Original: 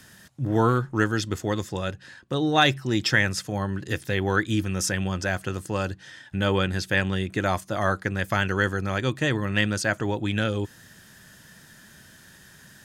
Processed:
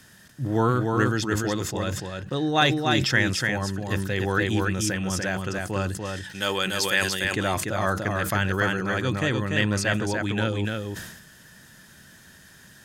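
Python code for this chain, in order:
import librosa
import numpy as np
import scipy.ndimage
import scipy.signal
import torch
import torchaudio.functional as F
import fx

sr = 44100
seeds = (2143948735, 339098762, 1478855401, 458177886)

y = fx.riaa(x, sr, side='recording', at=(6.05, 7.25))
y = y + 10.0 ** (-4.0 / 20.0) * np.pad(y, (int(293 * sr / 1000.0), 0))[:len(y)]
y = fx.sustainer(y, sr, db_per_s=58.0)
y = y * 10.0 ** (-1.5 / 20.0)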